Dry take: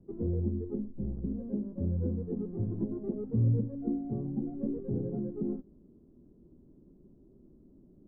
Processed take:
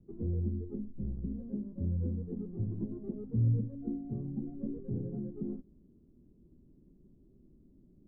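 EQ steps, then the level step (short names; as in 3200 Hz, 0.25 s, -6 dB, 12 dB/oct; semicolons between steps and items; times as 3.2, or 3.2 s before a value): air absorption 390 m; bell 680 Hz -7.5 dB 2.9 oct; 0.0 dB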